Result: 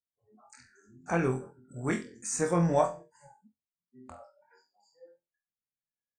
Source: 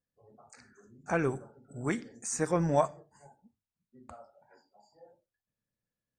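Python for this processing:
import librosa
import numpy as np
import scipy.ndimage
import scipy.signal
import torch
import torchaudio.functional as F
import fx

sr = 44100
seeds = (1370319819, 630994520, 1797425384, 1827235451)

y = fx.room_flutter(x, sr, wall_m=4.0, rt60_s=0.27)
y = fx.noise_reduce_blind(y, sr, reduce_db=19)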